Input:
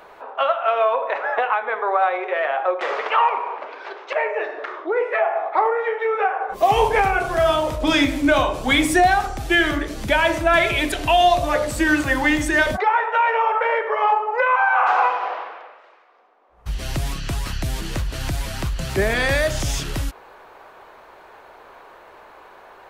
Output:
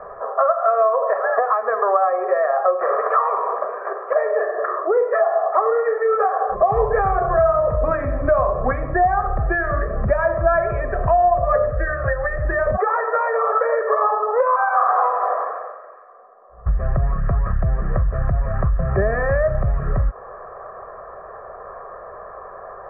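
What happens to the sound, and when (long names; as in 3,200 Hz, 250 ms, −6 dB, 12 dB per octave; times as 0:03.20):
0:11.70–0:12.45: phaser with its sweep stopped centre 940 Hz, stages 6
whole clip: comb filter 1.7 ms, depth 98%; downward compressor 3 to 1, threshold −23 dBFS; Butterworth low-pass 1,600 Hz 48 dB per octave; level +6.5 dB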